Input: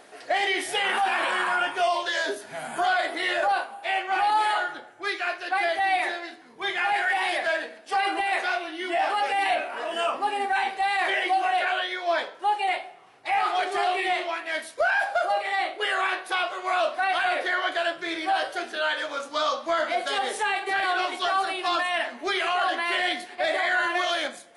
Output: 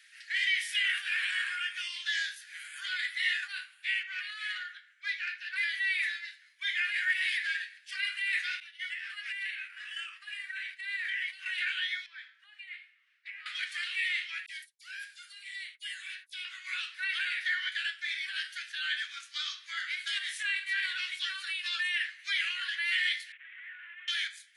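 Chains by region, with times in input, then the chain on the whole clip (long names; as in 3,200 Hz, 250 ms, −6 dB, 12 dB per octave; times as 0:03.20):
0:04.03–0:05.56: Butterworth high-pass 1,100 Hz 48 dB per octave + high-shelf EQ 5,500 Hz −11.5 dB + saturating transformer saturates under 1,600 Hz
0:08.60–0:11.46: downward expander −29 dBFS + dynamic equaliser 1,600 Hz, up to +5 dB, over −40 dBFS, Q 1.1 + downward compressor 10 to 1, threshold −27 dBFS
0:12.06–0:13.46: low-pass filter 1,100 Hz 6 dB per octave + downward compressor 2 to 1, threshold −34 dBFS
0:14.46–0:16.45: noise gate −38 dBFS, range −34 dB + first difference + all-pass dispersion lows, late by 47 ms, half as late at 1,800 Hz
0:23.32–0:24.08: linear delta modulator 16 kbit/s, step −41 dBFS + downward expander −28 dBFS + envelope flattener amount 70%
whole clip: Butterworth high-pass 1,700 Hz 48 dB per octave; high-shelf EQ 5,000 Hz −8 dB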